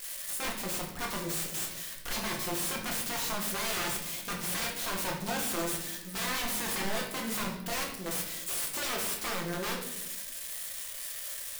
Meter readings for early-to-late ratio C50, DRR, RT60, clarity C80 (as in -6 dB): 5.5 dB, -1.0 dB, 0.90 s, 8.5 dB